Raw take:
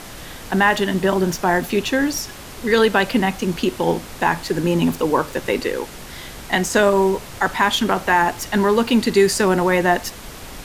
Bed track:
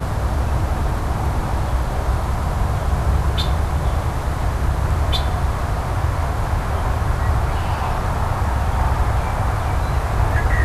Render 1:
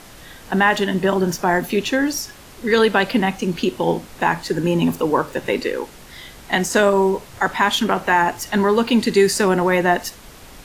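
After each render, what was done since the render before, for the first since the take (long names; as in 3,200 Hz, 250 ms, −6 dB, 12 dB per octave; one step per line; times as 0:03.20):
noise reduction from a noise print 6 dB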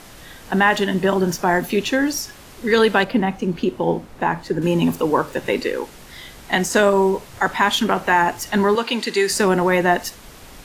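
0:03.04–0:04.62: high-shelf EQ 2,100 Hz −11 dB
0:08.75–0:09.30: meter weighting curve A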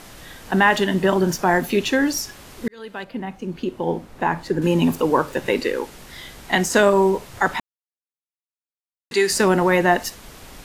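0:02.68–0:04.45: fade in
0:07.60–0:09.11: silence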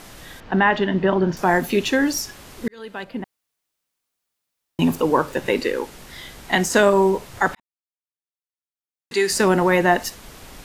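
0:00.40–0:01.37: high-frequency loss of the air 240 metres
0:03.24–0:04.79: fill with room tone
0:07.55–0:09.49: fade in linear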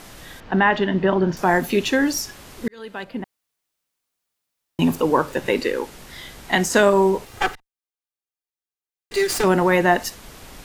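0:07.25–0:09.44: lower of the sound and its delayed copy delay 2.5 ms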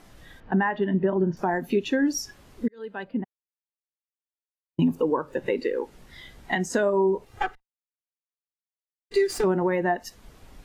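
downward compressor 4 to 1, threshold −24 dBFS, peak gain reduction 11.5 dB
every bin expanded away from the loudest bin 1.5 to 1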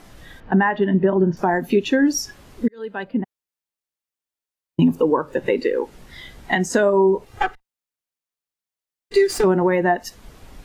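level +6 dB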